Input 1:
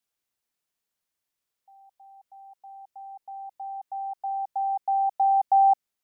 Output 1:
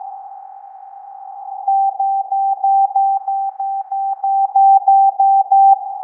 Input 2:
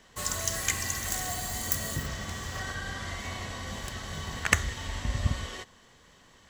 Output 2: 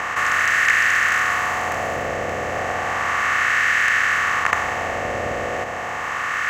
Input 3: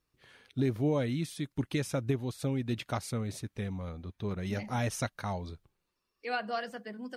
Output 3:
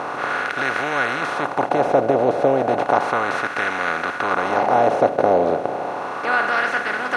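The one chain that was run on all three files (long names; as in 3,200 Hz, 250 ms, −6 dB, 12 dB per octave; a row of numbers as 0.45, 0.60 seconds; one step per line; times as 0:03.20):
compressor on every frequency bin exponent 0.2
LFO wah 0.33 Hz 580–1,600 Hz, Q 2.1
normalise the peak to −1.5 dBFS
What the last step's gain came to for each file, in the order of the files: +11.0, +10.0, +14.5 decibels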